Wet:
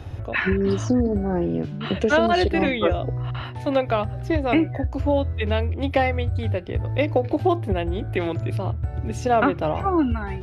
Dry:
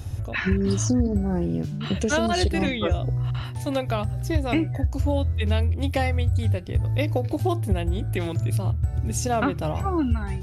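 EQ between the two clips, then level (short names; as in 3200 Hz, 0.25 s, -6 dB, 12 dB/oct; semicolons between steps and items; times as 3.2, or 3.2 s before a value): three-band isolator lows -13 dB, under 310 Hz, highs -20 dB, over 3700 Hz; low shelf 390 Hz +6 dB; +4.5 dB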